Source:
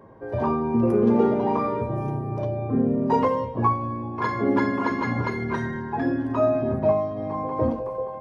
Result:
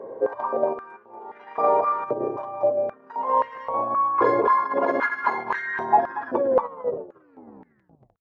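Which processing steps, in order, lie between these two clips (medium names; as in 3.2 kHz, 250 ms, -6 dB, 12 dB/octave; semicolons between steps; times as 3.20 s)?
tape stop on the ending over 2.00 s; tilt EQ -3.5 dB/octave; compressor with a negative ratio -21 dBFS, ratio -0.5; on a send: delay 234 ms -4 dB; on the sum: step-sequenced high-pass 3.8 Hz 480–1800 Hz; trim -1.5 dB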